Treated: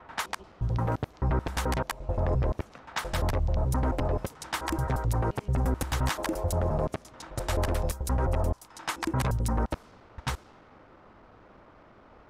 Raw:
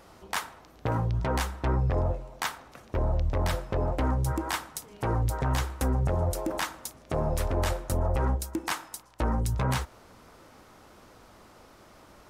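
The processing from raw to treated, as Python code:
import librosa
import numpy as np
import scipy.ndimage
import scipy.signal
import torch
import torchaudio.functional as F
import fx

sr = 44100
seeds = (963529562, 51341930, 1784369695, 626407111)

y = fx.block_reorder(x, sr, ms=87.0, group=7)
y = fx.env_lowpass(y, sr, base_hz=1900.0, full_db=-27.5)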